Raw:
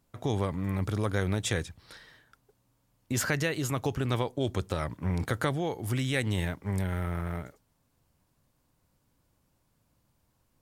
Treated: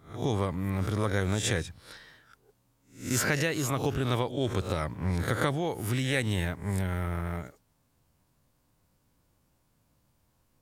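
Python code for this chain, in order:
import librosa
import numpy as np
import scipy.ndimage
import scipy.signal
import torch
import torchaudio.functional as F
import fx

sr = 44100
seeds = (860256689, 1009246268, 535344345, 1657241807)

y = fx.spec_swells(x, sr, rise_s=0.4)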